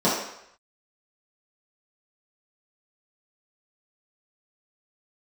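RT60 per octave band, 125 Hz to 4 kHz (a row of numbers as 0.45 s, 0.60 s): 0.55 s, 0.55 s, 0.70 s, 0.75 s, 0.80 s, 0.70 s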